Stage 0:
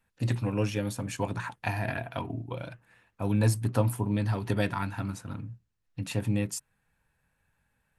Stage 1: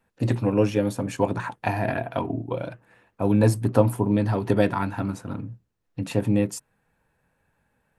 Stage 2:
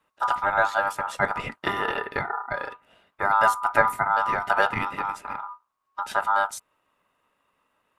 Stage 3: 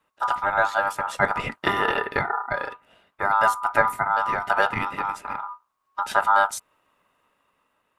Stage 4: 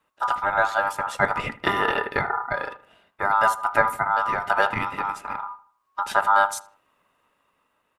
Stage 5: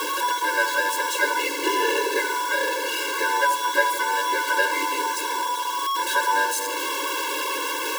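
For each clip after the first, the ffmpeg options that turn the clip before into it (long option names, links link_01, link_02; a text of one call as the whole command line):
ffmpeg -i in.wav -af "equalizer=frequency=430:width_type=o:width=2.9:gain=10.5" out.wav
ffmpeg -i in.wav -af "aeval=exprs='val(0)*sin(2*PI*1100*n/s)':channel_layout=same,volume=1.5dB" out.wav
ffmpeg -i in.wav -af "dynaudnorm=framelen=480:gausssize=5:maxgain=6dB" out.wav
ffmpeg -i in.wav -filter_complex "[0:a]asplit=2[link_01][link_02];[link_02]adelay=78,lowpass=frequency=2200:poles=1,volume=-16.5dB,asplit=2[link_03][link_04];[link_04]adelay=78,lowpass=frequency=2200:poles=1,volume=0.41,asplit=2[link_05][link_06];[link_06]adelay=78,lowpass=frequency=2200:poles=1,volume=0.41,asplit=2[link_07][link_08];[link_08]adelay=78,lowpass=frequency=2200:poles=1,volume=0.41[link_09];[link_01][link_03][link_05][link_07][link_09]amix=inputs=5:normalize=0" out.wav
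ffmpeg -i in.wav -af "aeval=exprs='val(0)+0.5*0.15*sgn(val(0))':channel_layout=same,afftfilt=real='re*eq(mod(floor(b*sr/1024/290),2),1)':imag='im*eq(mod(floor(b*sr/1024/290),2),1)':win_size=1024:overlap=0.75,volume=-1dB" out.wav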